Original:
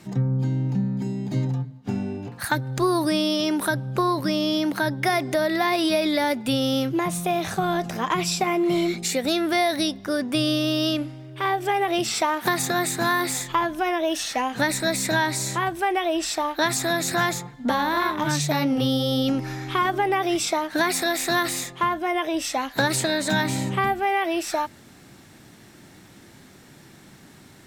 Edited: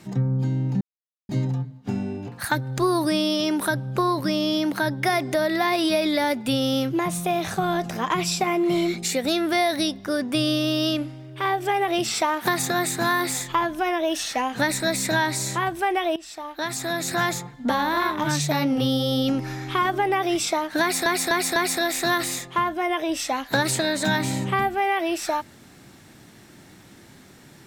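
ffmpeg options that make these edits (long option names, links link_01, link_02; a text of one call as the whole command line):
ffmpeg -i in.wav -filter_complex "[0:a]asplit=7[link_01][link_02][link_03][link_04][link_05][link_06][link_07];[link_01]atrim=end=0.81,asetpts=PTS-STARTPTS,afade=type=out:start_time=0.806:duration=0.004:curve=hsin[link_08];[link_02]atrim=start=0.81:end=1.29,asetpts=PTS-STARTPTS,volume=0[link_09];[link_03]atrim=start=1.29:end=16.16,asetpts=PTS-STARTPTS,afade=type=in:duration=0.004:curve=hsin,afade=type=out:start_time=14.866:duration=0.004:curve=hsin:silence=0.133352[link_10];[link_04]atrim=start=16.16:end=21.062,asetpts=PTS-STARTPTS,afade=type=in:duration=1.18:silence=0.133352[link_11];[link_05]atrim=start=20.808:end=21.062[link_12];[link_06]atrim=start=20.808:end=21.062[link_13];[link_07]atrim=start=20.808[link_14];[link_08][link_09][link_10][link_11]concat=n=4:v=0:a=1[link_15];[link_15][link_12]acrossfade=duration=0.004:curve1=hsin:curve2=hsin[link_16];[link_16][link_13]acrossfade=duration=0.004:curve1=hsin:curve2=hsin[link_17];[link_17][link_14]acrossfade=duration=0.004:curve1=hsin:curve2=hsin" out.wav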